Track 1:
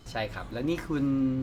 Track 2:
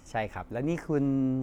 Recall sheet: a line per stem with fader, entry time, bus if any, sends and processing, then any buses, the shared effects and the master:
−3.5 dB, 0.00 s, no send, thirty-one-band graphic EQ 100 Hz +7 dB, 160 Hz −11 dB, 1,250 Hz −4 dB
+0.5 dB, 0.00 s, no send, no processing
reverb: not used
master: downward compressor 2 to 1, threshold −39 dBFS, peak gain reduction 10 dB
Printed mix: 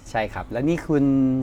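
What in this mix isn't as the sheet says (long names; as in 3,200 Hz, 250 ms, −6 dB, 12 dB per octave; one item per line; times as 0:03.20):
stem 2 +0.5 dB → +7.0 dB
master: missing downward compressor 2 to 1, threshold −39 dBFS, peak gain reduction 10 dB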